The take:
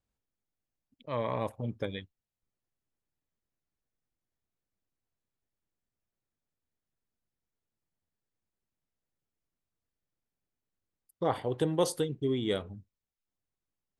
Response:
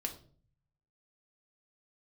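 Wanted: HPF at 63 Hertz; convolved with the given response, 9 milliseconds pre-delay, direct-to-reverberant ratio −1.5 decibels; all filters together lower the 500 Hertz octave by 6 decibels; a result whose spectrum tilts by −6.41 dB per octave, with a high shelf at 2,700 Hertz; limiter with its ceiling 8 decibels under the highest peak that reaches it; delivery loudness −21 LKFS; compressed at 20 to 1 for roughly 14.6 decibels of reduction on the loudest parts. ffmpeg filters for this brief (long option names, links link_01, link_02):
-filter_complex "[0:a]highpass=63,equalizer=frequency=500:width_type=o:gain=-7,highshelf=frequency=2700:gain=-4,acompressor=threshold=-41dB:ratio=20,alimiter=level_in=13.5dB:limit=-24dB:level=0:latency=1,volume=-13.5dB,asplit=2[link_01][link_02];[1:a]atrim=start_sample=2205,adelay=9[link_03];[link_02][link_03]afir=irnorm=-1:irlink=0,volume=1dB[link_04];[link_01][link_04]amix=inputs=2:normalize=0,volume=24.5dB"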